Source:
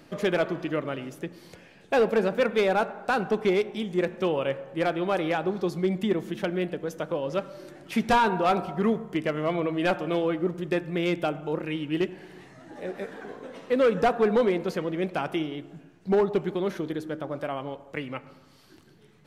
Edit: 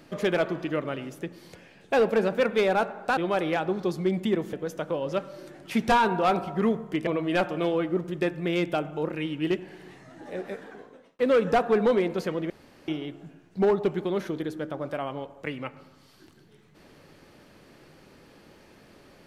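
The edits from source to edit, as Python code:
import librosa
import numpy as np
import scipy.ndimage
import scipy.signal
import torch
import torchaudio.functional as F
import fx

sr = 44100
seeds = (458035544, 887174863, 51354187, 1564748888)

y = fx.edit(x, sr, fx.cut(start_s=3.17, length_s=1.78),
    fx.cut(start_s=6.31, length_s=0.43),
    fx.cut(start_s=9.28, length_s=0.29),
    fx.fade_out_span(start_s=12.93, length_s=0.76),
    fx.room_tone_fill(start_s=15.0, length_s=0.38), tone=tone)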